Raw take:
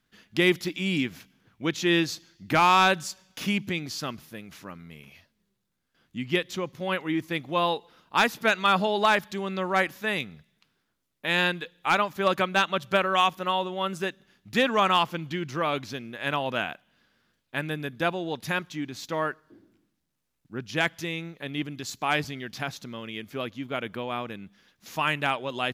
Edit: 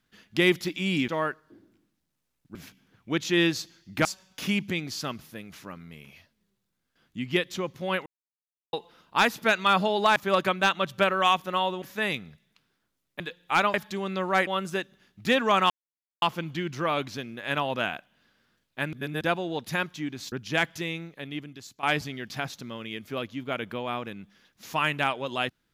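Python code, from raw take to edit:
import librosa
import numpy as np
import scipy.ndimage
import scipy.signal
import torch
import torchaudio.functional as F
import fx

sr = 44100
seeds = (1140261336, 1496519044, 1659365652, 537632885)

y = fx.edit(x, sr, fx.cut(start_s=2.58, length_s=0.46),
    fx.silence(start_s=7.05, length_s=0.67),
    fx.swap(start_s=9.15, length_s=0.73, other_s=12.09, other_length_s=1.66),
    fx.cut(start_s=11.26, length_s=0.29),
    fx.insert_silence(at_s=14.98, length_s=0.52),
    fx.reverse_span(start_s=17.69, length_s=0.28),
    fx.move(start_s=19.08, length_s=1.47, to_s=1.08),
    fx.fade_out_to(start_s=21.12, length_s=0.94, floor_db=-15.0), tone=tone)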